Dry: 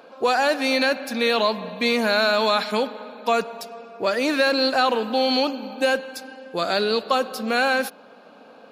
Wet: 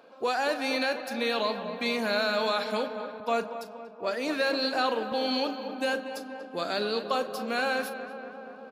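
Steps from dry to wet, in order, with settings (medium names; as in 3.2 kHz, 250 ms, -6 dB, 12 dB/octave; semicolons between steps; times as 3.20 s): doubling 39 ms -13 dB; on a send: filtered feedback delay 238 ms, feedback 77%, low-pass 2.1 kHz, level -10 dB; 3.20–5.12 s: on the sum: three bands expanded up and down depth 40%; trim -8 dB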